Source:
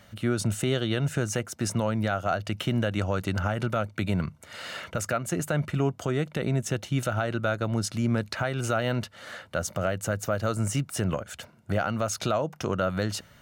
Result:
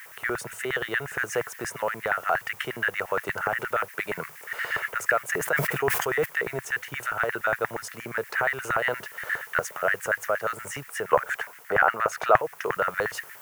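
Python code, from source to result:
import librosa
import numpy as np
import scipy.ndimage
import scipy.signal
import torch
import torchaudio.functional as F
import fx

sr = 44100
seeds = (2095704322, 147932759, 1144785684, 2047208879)

y = fx.peak_eq(x, sr, hz=840.0, db=11.5, octaves=2.9, at=(11.09, 12.37))
y = fx.quant_dither(y, sr, seeds[0], bits=8, dither='triangular')
y = fx.rider(y, sr, range_db=3, speed_s=0.5)
y = fx.filter_lfo_highpass(y, sr, shape='square', hz=8.5, low_hz=450.0, high_hz=1800.0, q=7.0)
y = fx.graphic_eq(y, sr, hz=(125, 250, 500, 1000, 4000, 8000), db=(9, -8, -10, 6, -11, -4))
y = fx.sustainer(y, sr, db_per_s=46.0, at=(5.29, 6.24), fade=0.02)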